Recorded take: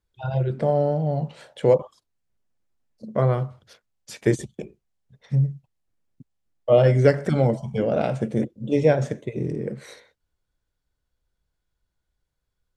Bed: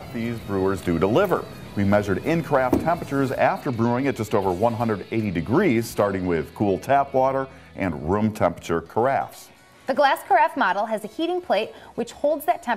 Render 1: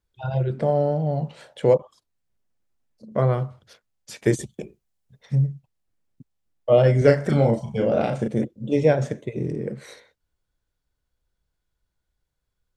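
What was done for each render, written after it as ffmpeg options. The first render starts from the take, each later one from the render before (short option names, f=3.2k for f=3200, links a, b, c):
-filter_complex "[0:a]asettb=1/sr,asplit=3[a][b][c];[a]atrim=end=1.774[d];[b]atrim=start=1.77:end=3.12,asetpts=PTS-STARTPTS,afade=t=in:d=0.004:c=qsin,afade=t=out:st=1.346:d=0.004:c=qsin,acompressor=threshold=-50dB:ratio=1.5:attack=3.2:release=140:knee=1:detection=peak[e];[c]atrim=start=3.116[f];[d][e]acrossfade=d=0.004:c1=hsin:c2=qsin[g];[g][f]acrossfade=d=0.004:c1=qsin:c2=hsin,asettb=1/sr,asplit=3[h][i][j];[h]atrim=end=4.254[k];[i]atrim=start=4.25:end=5.42,asetpts=PTS-STARTPTS,afade=t=in:d=0.004:c=qsin,afade=t=out:st=1.166:d=0.004:c=qsin,highshelf=f=6.7k:g=6.5[l];[j]atrim=start=5.416[m];[k][l]acrossfade=d=0.004:c1=hsin:c2=qsin[n];[n][m]acrossfade=d=0.004:c1=qsin:c2=hsin,asettb=1/sr,asplit=3[o][p][q];[o]atrim=end=6.984[r];[p]atrim=start=6.98:end=8.28,asetpts=PTS-STARTPTS,afade=t=in:d=0.004:c=qsin,afade=t=out:st=1.296:d=0.004:c=qsin,asplit=2[s][t];[t]adelay=35,volume=-4.5dB[u];[s][u]amix=inputs=2:normalize=0,atrim=end_sample=57330[v];[q]atrim=start=8.276[w];[r][v]acrossfade=d=0.004:c1=hsin:c2=qsin[x];[x][w]acrossfade=d=0.004:c1=qsin:c2=hsin"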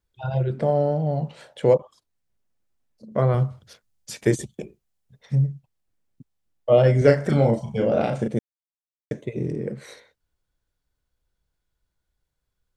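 -filter_complex "[0:a]asettb=1/sr,asplit=3[a][b][c];[a]atrim=end=3.344[d];[b]atrim=start=3.34:end=4.25,asetpts=PTS-STARTPTS,afade=t=in:d=0.004:c=qsin,afade=t=out:st=0.906:d=0.004:c=qsin,bass=f=250:g=6,treble=f=4k:g=5[e];[c]atrim=start=4.246[f];[d][e]acrossfade=d=0.004:c1=hsin:c2=qsin[g];[g][f]acrossfade=d=0.004:c1=qsin:c2=hsin,asplit=3[h][i][j];[h]atrim=end=8.39,asetpts=PTS-STARTPTS,afade=t=out:st=8.386:d=0.004:c=hsin[k];[i]atrim=start=8.39:end=9.11,asetpts=PTS-STARTPTS,volume=0[l];[j]atrim=start=9.11,asetpts=PTS-STARTPTS,afade=t=in:d=0.004:c=hsin[m];[k][l][m]concat=n=3:v=0:a=1"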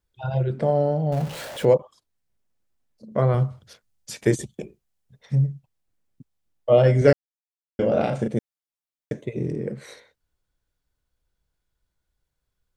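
-filter_complex "[0:a]asettb=1/sr,asplit=3[a][b][c];[a]atrim=end=1.124[d];[b]atrim=start=1.12:end=1.65,asetpts=PTS-STARTPTS,afade=t=in:d=0.004:c=qsin,afade=t=out:st=0.526:d=0.004:c=qsin,aeval=exprs='val(0)+0.5*0.0266*sgn(val(0))':c=same[e];[c]atrim=start=1.646[f];[d][e]acrossfade=d=0.004:c1=hsin:c2=qsin[g];[g][f]acrossfade=d=0.004:c1=qsin:c2=hsin,asplit=3[h][i][j];[h]atrim=end=7.13,asetpts=PTS-STARTPTS,afade=t=out:st=7.126:d=0.004:c=hsin[k];[i]atrim=start=7.13:end=7.79,asetpts=PTS-STARTPTS,volume=0[l];[j]atrim=start=7.79,asetpts=PTS-STARTPTS,afade=t=in:d=0.004:c=hsin[m];[k][l][m]concat=n=3:v=0:a=1"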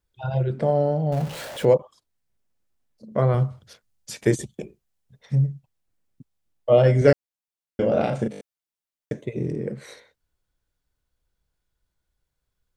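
-filter_complex "[0:a]asplit=6[a][b][c][d][e][f];[a]atrim=end=8.332[g];[b]atrim=start=8.308:end=8.332[h];[c]atrim=start=8.308:end=8.332[i];[d]atrim=start=8.308:end=8.332[j];[e]atrim=start=8.308:end=8.332[k];[f]atrim=start=8.408[l];[g][h]acrossfade=d=0.004:c1=hsin:c2=hsin[m];[m][i]acrossfade=d=0.004:c1=hsin:c2=hsin[n];[n][j]acrossfade=d=0.004:c1=hsin:c2=hsin[o];[o][k]acrossfade=d=0.004:c1=hsin:c2=hsin[p];[p][l]acrossfade=d=0.004:c1=hsin:c2=hsin"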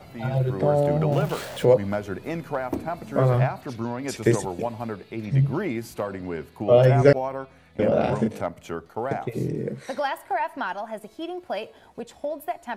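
-filter_complex "[1:a]volume=-8.5dB[a];[0:a][a]amix=inputs=2:normalize=0"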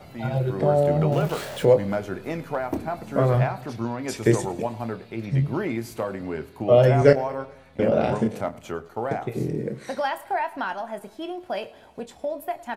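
-filter_complex "[0:a]asplit=2[a][b];[b]adelay=26,volume=-11.5dB[c];[a][c]amix=inputs=2:normalize=0,aecho=1:1:106|212|318|424:0.0891|0.0508|0.029|0.0165"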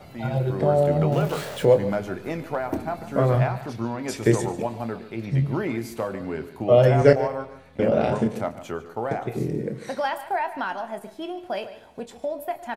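-filter_complex "[0:a]asplit=2[a][b];[b]adelay=145.8,volume=-14dB,highshelf=f=4k:g=-3.28[c];[a][c]amix=inputs=2:normalize=0"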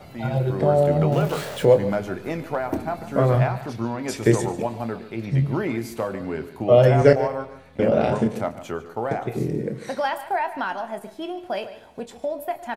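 -af "volume=1.5dB,alimiter=limit=-2dB:level=0:latency=1"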